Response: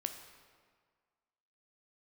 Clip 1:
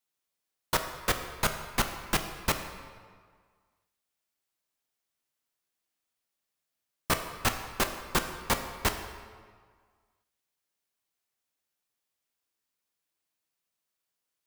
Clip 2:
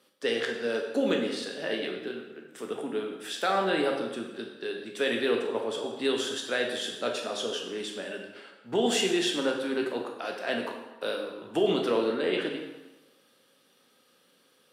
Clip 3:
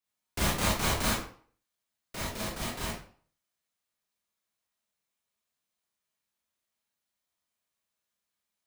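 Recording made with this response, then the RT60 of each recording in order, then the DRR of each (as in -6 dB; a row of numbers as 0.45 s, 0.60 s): 1; 1.8 s, 1.1 s, 0.50 s; 6.0 dB, 1.0 dB, -6.0 dB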